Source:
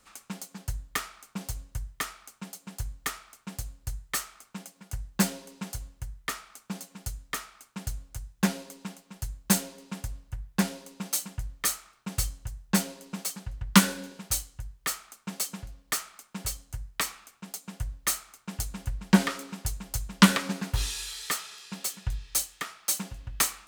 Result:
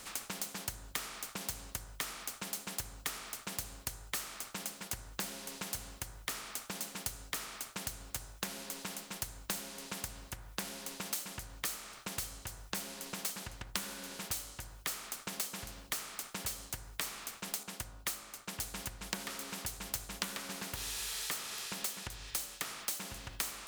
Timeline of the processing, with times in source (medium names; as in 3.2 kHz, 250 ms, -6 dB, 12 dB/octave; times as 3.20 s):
17.63–18.61 s: upward expansion, over -39 dBFS
whole clip: de-hum 51.86 Hz, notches 29; compression 6:1, threshold -39 dBFS; spectrum-flattening compressor 2:1; trim +4.5 dB